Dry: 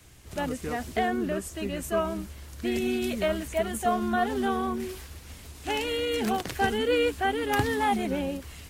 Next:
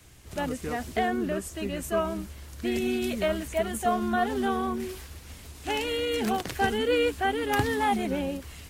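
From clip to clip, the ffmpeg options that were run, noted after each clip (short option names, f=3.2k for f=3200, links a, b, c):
-af anull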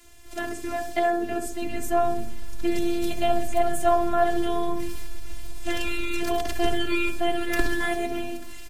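-filter_complex "[0:a]acrossover=split=150|650|3800[a][b][c][d];[a]dynaudnorm=f=500:g=7:m=13dB[e];[e][b][c][d]amix=inputs=4:normalize=0,afftfilt=real='hypot(re,im)*cos(PI*b)':imag='0':win_size=512:overlap=0.75,asplit=2[f][g];[g]adelay=65,lowpass=f=1.3k:p=1,volume=-5.5dB,asplit=2[h][i];[i]adelay=65,lowpass=f=1.3k:p=1,volume=0.52,asplit=2[j][k];[k]adelay=65,lowpass=f=1.3k:p=1,volume=0.52,asplit=2[l][m];[m]adelay=65,lowpass=f=1.3k:p=1,volume=0.52,asplit=2[n][o];[o]adelay=65,lowpass=f=1.3k:p=1,volume=0.52,asplit=2[p][q];[q]adelay=65,lowpass=f=1.3k:p=1,volume=0.52,asplit=2[r][s];[s]adelay=65,lowpass=f=1.3k:p=1,volume=0.52[t];[f][h][j][l][n][p][r][t]amix=inputs=8:normalize=0,volume=5dB"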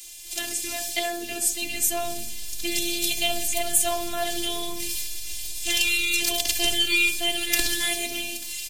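-af "aexciter=amount=8.8:drive=6.3:freq=2.2k,volume=-7.5dB"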